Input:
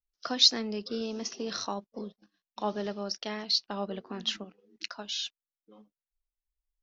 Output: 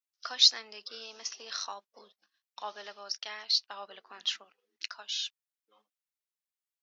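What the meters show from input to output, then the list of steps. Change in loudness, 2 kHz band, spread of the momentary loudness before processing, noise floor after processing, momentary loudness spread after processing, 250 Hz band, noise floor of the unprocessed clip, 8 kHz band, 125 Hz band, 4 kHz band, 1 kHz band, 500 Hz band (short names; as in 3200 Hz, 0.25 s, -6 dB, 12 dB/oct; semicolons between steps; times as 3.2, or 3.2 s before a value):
+0.5 dB, -0.5 dB, 19 LU, under -85 dBFS, 22 LU, under -25 dB, under -85 dBFS, n/a, under -25 dB, 0.0 dB, -5.0 dB, -13.5 dB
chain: HPF 1100 Hz 12 dB/oct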